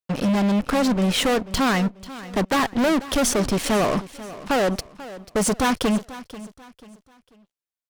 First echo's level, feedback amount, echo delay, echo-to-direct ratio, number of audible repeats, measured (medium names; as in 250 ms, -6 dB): -16.5 dB, 35%, 489 ms, -16.0 dB, 3